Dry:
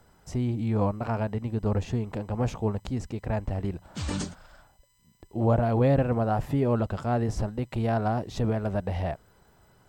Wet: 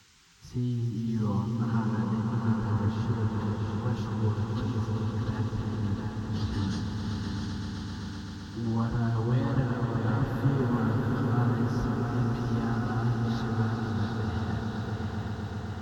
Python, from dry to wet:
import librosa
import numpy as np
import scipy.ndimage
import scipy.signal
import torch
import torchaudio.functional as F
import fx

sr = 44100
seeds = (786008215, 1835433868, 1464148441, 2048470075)

y = fx.fixed_phaser(x, sr, hz=2300.0, stages=6)
y = fx.echo_tape(y, sr, ms=438, feedback_pct=64, wet_db=-4, lp_hz=5700.0, drive_db=18.0, wow_cents=35)
y = fx.stretch_vocoder_free(y, sr, factor=1.6)
y = scipy.signal.sosfilt(scipy.signal.butter(2, 47.0, 'highpass', fs=sr, output='sos'), y)
y = fx.echo_swell(y, sr, ms=128, loudest=5, wet_db=-8.5)
y = fx.dmg_noise_band(y, sr, seeds[0], low_hz=1100.0, high_hz=7100.0, level_db=-61.0)